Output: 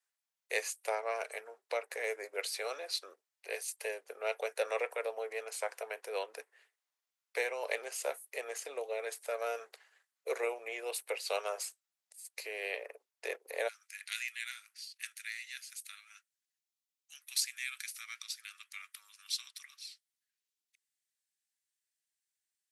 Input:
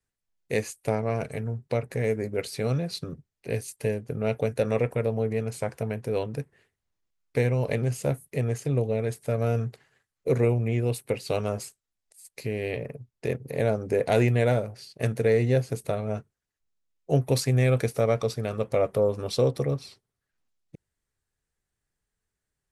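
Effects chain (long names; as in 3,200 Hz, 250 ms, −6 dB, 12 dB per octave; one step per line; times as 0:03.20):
Bessel high-pass filter 840 Hz, order 8, from 0:13.67 2,800 Hz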